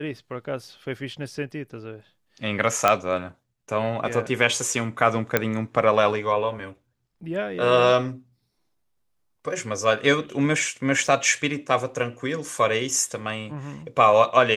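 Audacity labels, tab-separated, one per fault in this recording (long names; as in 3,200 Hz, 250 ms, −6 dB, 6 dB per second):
2.880000	2.880000	click −4 dBFS
5.370000	5.370000	click −5 dBFS
11.070000	11.070000	drop-out 3.1 ms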